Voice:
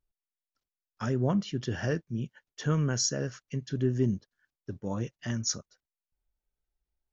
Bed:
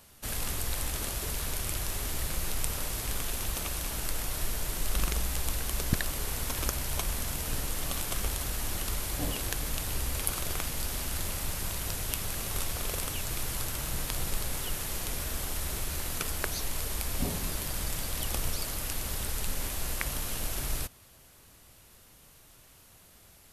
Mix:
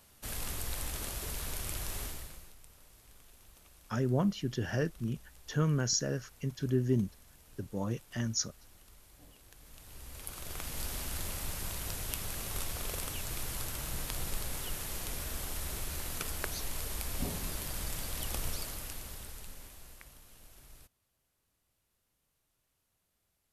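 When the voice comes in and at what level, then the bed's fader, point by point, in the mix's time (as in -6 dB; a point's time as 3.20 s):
2.90 s, -2.0 dB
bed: 2.03 s -5 dB
2.58 s -25.5 dB
9.45 s -25.5 dB
10.80 s -4.5 dB
18.55 s -4.5 dB
20.22 s -23 dB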